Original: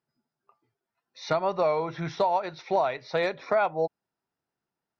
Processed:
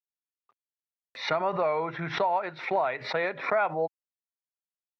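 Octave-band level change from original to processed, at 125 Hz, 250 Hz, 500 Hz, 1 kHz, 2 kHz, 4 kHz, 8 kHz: -2.5 dB, -2.0 dB, -2.5 dB, -0.5 dB, +3.5 dB, +2.0 dB, no reading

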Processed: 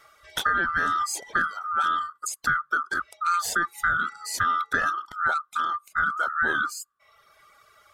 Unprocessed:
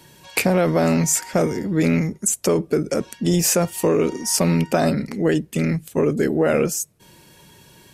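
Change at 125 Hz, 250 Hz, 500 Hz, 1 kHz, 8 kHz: -24.0 dB, -23.5 dB, -22.5 dB, +5.5 dB, -12.0 dB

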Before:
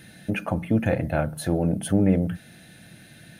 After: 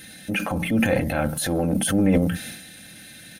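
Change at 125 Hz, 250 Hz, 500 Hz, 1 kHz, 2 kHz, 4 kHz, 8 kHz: -1.0 dB, +2.0 dB, +1.5 dB, +3.0 dB, +6.5 dB, +10.0 dB, +9.5 dB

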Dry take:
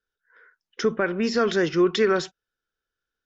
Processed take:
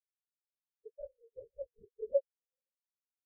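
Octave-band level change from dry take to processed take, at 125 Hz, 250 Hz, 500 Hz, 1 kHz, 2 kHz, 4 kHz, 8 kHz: under -35 dB, under -40 dB, -15.5 dB, under -40 dB, under -40 dB, under -40 dB, no reading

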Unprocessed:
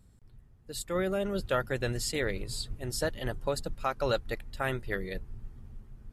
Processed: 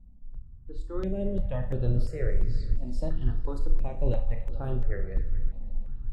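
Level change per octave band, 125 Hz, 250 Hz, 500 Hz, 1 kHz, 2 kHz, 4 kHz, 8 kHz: +7.0 dB, +1.0 dB, -4.0 dB, -10.0 dB, -13.5 dB, -18.0 dB, under -20 dB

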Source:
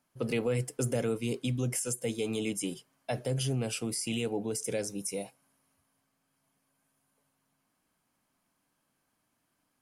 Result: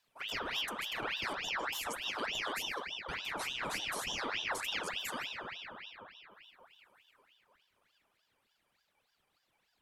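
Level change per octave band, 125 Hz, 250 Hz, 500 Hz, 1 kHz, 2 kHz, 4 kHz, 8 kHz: -23.0 dB, -16.0 dB, -12.0 dB, +7.5 dB, +7.0 dB, +5.0 dB, -9.0 dB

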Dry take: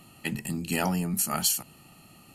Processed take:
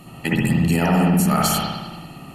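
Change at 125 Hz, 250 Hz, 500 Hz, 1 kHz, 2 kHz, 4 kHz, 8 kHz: +14.0 dB, +13.0 dB, +11.5 dB, +11.5 dB, +9.5 dB, +5.5 dB, +1.0 dB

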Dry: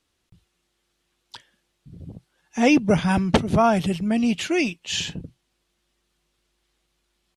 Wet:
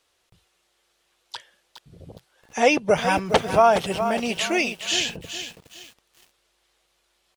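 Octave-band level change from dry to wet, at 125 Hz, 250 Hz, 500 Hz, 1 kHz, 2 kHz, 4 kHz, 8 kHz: -8.5 dB, -8.0 dB, +3.0 dB, +3.5 dB, +3.0 dB, +3.5 dB, +3.5 dB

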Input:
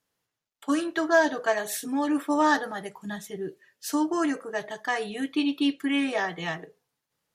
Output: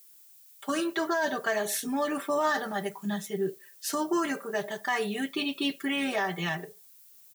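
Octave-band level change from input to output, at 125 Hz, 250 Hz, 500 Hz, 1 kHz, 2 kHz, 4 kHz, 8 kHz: +3.5 dB, -5.0 dB, -2.0 dB, -3.0 dB, -2.5 dB, +0.5 dB, +1.0 dB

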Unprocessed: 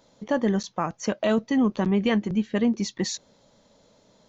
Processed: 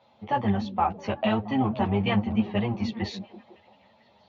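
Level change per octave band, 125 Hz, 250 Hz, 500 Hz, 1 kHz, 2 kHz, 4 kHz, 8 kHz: +3.0 dB, -3.0 dB, -4.0 dB, +5.5 dB, -1.5 dB, -2.0 dB, no reading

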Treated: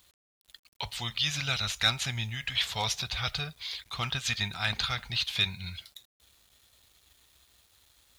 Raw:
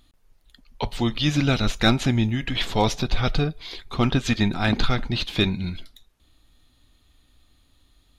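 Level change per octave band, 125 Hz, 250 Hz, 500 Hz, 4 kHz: -12.5 dB, -21.5 dB, -17.0 dB, -1.0 dB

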